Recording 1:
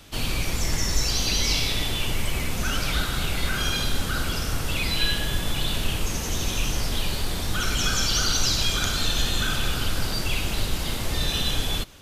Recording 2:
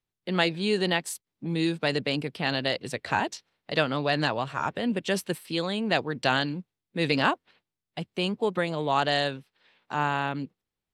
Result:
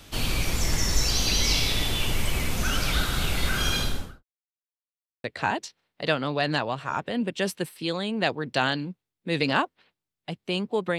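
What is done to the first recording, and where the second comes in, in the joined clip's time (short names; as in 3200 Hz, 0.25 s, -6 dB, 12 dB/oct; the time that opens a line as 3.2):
recording 1
3.75–4.24 studio fade out
4.24–5.24 mute
5.24 switch to recording 2 from 2.93 s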